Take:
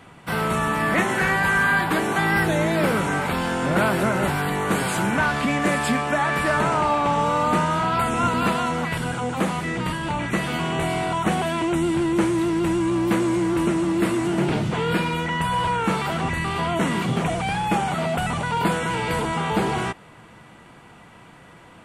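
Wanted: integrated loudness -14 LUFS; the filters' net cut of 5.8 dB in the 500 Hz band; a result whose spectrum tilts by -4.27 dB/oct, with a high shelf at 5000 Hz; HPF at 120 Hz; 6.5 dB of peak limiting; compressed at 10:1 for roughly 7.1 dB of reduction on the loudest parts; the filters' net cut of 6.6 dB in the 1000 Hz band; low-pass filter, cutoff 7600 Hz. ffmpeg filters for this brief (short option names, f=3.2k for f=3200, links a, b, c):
-af "highpass=120,lowpass=7.6k,equalizer=f=500:t=o:g=-6.5,equalizer=f=1k:t=o:g=-7,highshelf=f=5k:g=8.5,acompressor=threshold=-26dB:ratio=10,volume=17dB,alimiter=limit=-5dB:level=0:latency=1"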